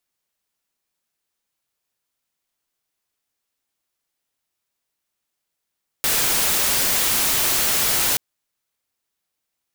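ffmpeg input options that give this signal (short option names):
-f lavfi -i "anoisesrc=c=white:a=0.183:d=2.13:r=44100:seed=1"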